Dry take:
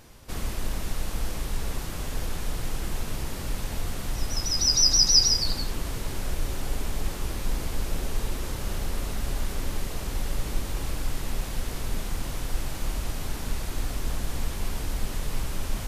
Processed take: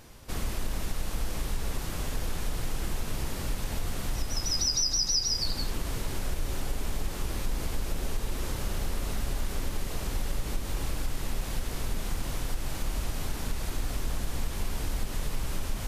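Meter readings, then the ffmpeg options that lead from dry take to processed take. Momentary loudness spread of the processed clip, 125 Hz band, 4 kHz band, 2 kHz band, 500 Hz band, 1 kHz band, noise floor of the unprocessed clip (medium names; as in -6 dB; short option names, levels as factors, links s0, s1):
9 LU, -2.0 dB, -6.5 dB, -1.5 dB, -1.5 dB, -1.5 dB, -34 dBFS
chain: -af "acompressor=threshold=0.0631:ratio=5"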